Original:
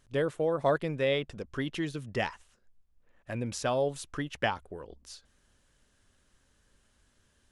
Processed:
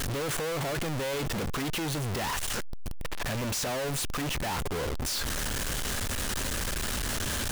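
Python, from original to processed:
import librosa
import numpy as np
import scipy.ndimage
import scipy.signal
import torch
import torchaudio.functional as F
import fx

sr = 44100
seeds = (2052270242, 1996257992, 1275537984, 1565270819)

y = np.sign(x) * np.sqrt(np.mean(np.square(x)))
y = y * 10.0 ** (3.5 / 20.0)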